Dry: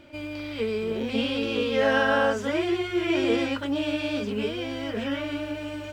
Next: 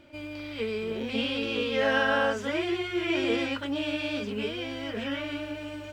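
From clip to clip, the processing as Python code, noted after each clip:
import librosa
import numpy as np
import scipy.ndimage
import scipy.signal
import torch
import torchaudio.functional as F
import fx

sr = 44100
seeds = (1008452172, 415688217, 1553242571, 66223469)

y = fx.dynamic_eq(x, sr, hz=2600.0, q=0.71, threshold_db=-40.0, ratio=4.0, max_db=4)
y = F.gain(torch.from_numpy(y), -4.0).numpy()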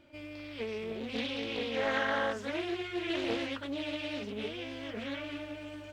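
y = fx.doppler_dist(x, sr, depth_ms=0.39)
y = F.gain(torch.from_numpy(y), -6.0).numpy()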